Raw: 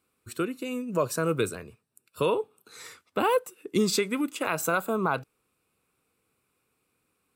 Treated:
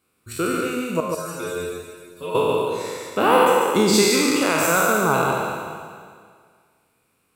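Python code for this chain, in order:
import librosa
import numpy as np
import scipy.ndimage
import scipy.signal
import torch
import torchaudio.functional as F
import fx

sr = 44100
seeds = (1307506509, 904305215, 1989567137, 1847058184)

p1 = fx.spec_trails(x, sr, decay_s=1.97)
p2 = fx.stiff_resonator(p1, sr, f0_hz=86.0, decay_s=0.44, stiffness=0.002, at=(1.0, 2.35))
p3 = p2 + fx.echo_single(p2, sr, ms=143, db=-4.5, dry=0)
y = p3 * librosa.db_to_amplitude(3.0)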